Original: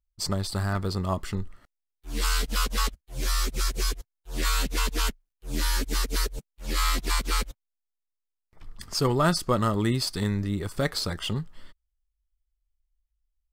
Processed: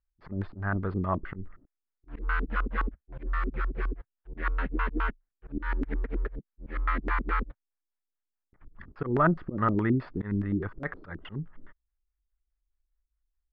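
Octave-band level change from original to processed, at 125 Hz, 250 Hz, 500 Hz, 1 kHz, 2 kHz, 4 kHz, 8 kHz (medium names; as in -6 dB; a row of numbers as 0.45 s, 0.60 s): -3.5 dB, -1.0 dB, -4.0 dB, -1.0 dB, -1.0 dB, -25.0 dB, under -40 dB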